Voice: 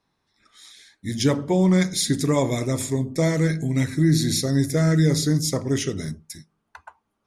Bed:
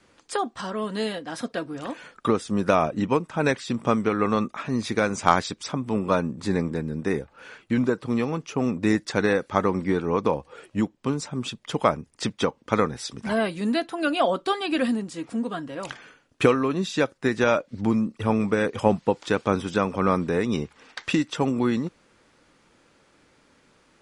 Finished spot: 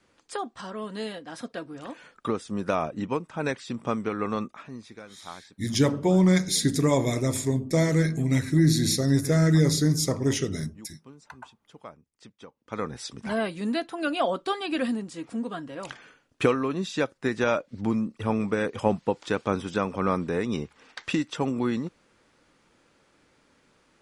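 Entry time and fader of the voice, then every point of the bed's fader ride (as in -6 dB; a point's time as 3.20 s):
4.55 s, -1.5 dB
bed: 4.42 s -6 dB
5.06 s -23 dB
12.49 s -23 dB
12.94 s -3.5 dB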